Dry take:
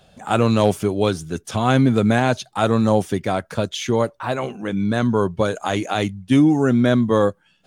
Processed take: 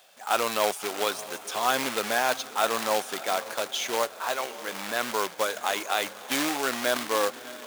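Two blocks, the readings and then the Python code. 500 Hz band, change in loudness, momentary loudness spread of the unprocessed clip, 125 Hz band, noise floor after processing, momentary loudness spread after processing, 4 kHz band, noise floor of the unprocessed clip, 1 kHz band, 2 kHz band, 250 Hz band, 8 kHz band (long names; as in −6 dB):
−8.5 dB, −8.0 dB, 8 LU, −31.0 dB, −44 dBFS, 5 LU, +0.5 dB, −60 dBFS, −3.5 dB, −1.0 dB, −19.0 dB, +4.0 dB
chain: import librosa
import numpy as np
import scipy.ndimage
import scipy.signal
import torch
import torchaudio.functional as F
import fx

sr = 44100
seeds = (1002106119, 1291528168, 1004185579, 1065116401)

y = fx.echo_diffused(x, sr, ms=620, feedback_pct=46, wet_db=-14.5)
y = fx.quant_companded(y, sr, bits=4)
y = scipy.signal.sosfilt(scipy.signal.butter(2, 700.0, 'highpass', fs=sr, output='sos'), y)
y = y * librosa.db_to_amplitude(-2.5)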